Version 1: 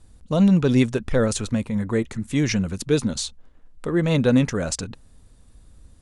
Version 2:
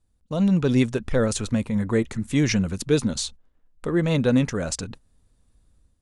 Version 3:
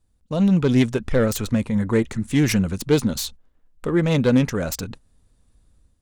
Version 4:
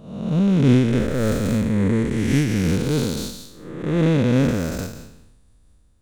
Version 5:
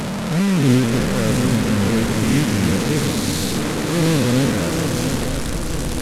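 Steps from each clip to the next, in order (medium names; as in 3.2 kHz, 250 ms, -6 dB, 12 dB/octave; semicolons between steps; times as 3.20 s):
gate -38 dBFS, range -12 dB; level rider gain up to 8 dB; trim -6.5 dB
self-modulated delay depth 0.099 ms; trim +2.5 dB
spectral blur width 400 ms; random flutter of the level, depth 55%; trim +8 dB
one-bit delta coder 64 kbps, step -18 dBFS; shuffle delay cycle 927 ms, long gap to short 3:1, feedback 50%, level -7 dB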